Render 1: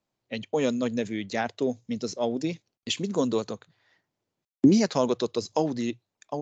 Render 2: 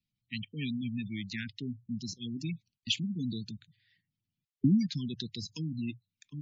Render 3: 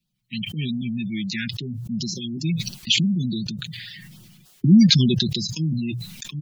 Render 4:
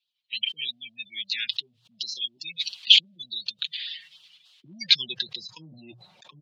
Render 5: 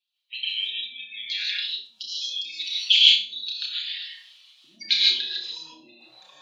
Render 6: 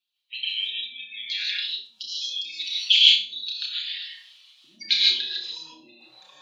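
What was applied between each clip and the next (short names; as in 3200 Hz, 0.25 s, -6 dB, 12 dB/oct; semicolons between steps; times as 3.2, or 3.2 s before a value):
Chebyshev band-stop 160–2700 Hz, order 2; air absorption 73 m; spectral gate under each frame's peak -20 dB strong; gain +1.5 dB
comb 5.5 ms, depth 79%; LFO notch sine 3.4 Hz 460–2300 Hz; sustainer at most 25 dB/s; gain +7.5 dB
graphic EQ 250/500/1000/4000 Hz -7/+8/+8/+10 dB; band-pass sweep 3000 Hz -> 670 Hz, 4.74–5.93; gain -1 dB
HPF 420 Hz 12 dB/oct; flutter echo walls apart 5.4 m, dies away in 0.36 s; non-linear reverb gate 0.18 s rising, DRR -4.5 dB; gain -4.5 dB
notch 660 Hz, Q 12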